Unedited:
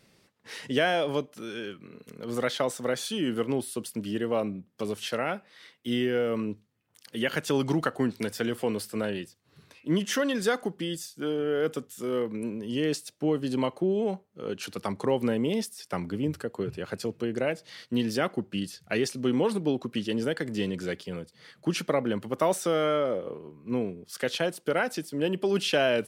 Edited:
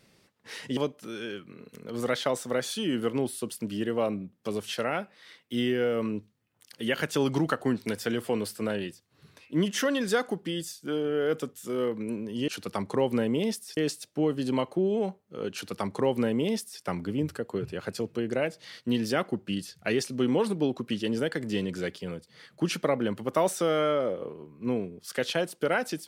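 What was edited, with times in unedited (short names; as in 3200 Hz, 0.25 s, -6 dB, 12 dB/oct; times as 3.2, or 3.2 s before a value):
0.77–1.11 cut
14.58–15.87 copy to 12.82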